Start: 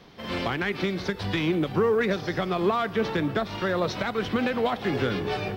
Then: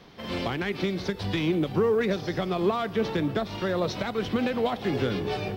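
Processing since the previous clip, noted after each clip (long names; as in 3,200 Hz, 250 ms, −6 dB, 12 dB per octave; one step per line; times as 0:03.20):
dynamic equaliser 1,500 Hz, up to −5 dB, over −43 dBFS, Q 0.95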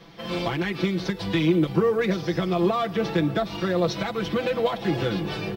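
comb filter 6 ms, depth 92%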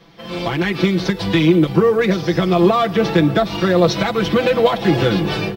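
automatic gain control gain up to 11.5 dB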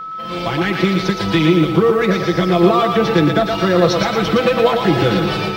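steady tone 1,300 Hz −26 dBFS
feedback echo with a high-pass in the loop 116 ms, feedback 49%, high-pass 420 Hz, level −4 dB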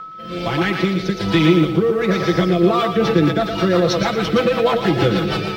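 rotating-speaker cabinet horn 1.2 Hz, later 6.3 Hz, at 0:02.43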